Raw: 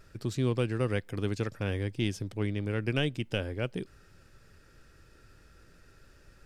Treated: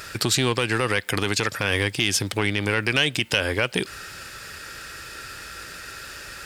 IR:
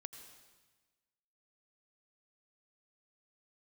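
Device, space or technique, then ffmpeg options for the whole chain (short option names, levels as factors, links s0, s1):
mastering chain: -af "highpass=40,equalizer=f=5900:t=o:w=0.29:g=-3,acompressor=threshold=0.02:ratio=2.5,asoftclip=type=tanh:threshold=0.0631,tiltshelf=f=660:g=-9.5,asoftclip=type=hard:threshold=0.0794,alimiter=level_in=20:limit=0.891:release=50:level=0:latency=1,volume=0.447"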